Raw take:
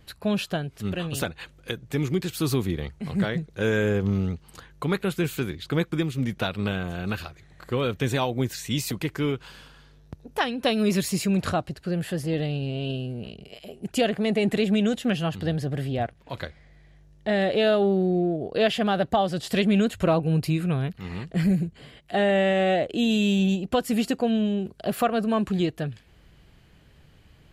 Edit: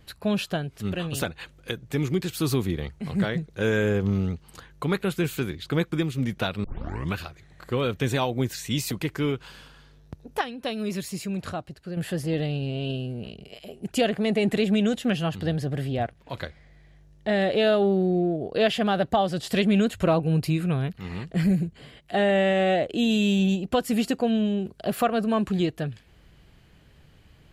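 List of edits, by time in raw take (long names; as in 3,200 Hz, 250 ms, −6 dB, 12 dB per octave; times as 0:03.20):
0:06.64: tape start 0.52 s
0:10.41–0:11.97: clip gain −7 dB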